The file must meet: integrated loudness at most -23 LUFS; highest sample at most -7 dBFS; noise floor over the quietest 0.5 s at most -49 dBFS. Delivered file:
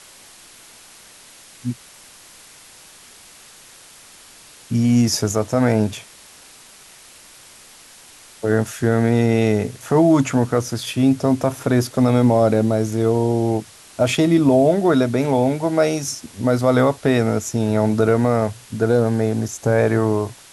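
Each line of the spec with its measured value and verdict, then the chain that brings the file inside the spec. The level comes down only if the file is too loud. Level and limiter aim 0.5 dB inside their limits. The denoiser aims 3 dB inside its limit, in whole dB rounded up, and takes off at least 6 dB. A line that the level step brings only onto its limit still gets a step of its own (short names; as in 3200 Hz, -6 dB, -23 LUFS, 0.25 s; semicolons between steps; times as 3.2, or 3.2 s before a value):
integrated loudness -18.5 LUFS: fail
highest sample -5.0 dBFS: fail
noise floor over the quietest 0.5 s -45 dBFS: fail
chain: gain -5 dB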